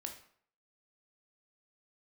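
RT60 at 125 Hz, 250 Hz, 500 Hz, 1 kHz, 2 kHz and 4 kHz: 0.55, 0.55, 0.60, 0.60, 0.50, 0.45 s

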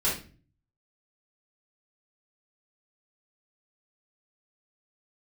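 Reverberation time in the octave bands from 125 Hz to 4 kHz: 0.85, 0.60, 0.45, 0.35, 0.35, 0.35 s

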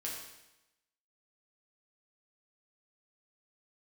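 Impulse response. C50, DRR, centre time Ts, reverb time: 2.5 dB, -4.0 dB, 53 ms, 0.95 s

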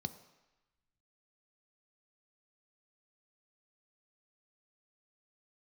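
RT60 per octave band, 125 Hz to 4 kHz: 0.85, 0.85, 0.95, 1.1, 1.2, 1.0 s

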